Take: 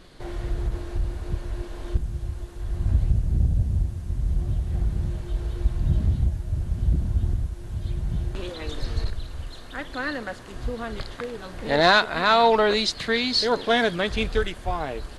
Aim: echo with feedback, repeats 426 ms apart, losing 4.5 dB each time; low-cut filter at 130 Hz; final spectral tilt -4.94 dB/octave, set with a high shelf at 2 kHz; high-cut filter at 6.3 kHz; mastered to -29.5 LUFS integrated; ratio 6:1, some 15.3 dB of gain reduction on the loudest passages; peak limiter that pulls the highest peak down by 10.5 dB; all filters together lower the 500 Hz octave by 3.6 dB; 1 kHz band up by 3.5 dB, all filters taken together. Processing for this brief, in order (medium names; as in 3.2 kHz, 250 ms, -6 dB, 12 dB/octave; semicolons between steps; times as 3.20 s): high-pass 130 Hz; low-pass 6.3 kHz; peaking EQ 500 Hz -7.5 dB; peaking EQ 1 kHz +9 dB; treble shelf 2 kHz -8 dB; compression 6:1, threshold -29 dBFS; peak limiter -26.5 dBFS; feedback delay 426 ms, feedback 60%, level -4.5 dB; trim +6.5 dB